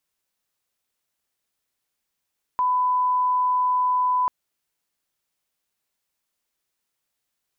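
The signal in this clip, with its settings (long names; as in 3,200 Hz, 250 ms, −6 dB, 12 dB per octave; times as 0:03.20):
line-up tone −18 dBFS 1.69 s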